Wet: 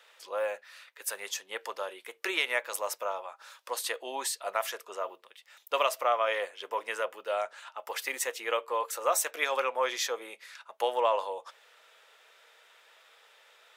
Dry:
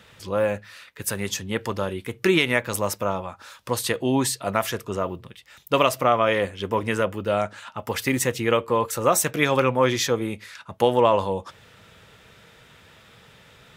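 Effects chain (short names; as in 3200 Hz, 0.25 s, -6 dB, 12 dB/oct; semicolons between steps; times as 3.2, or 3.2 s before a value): HPF 520 Hz 24 dB/oct; gain -6.5 dB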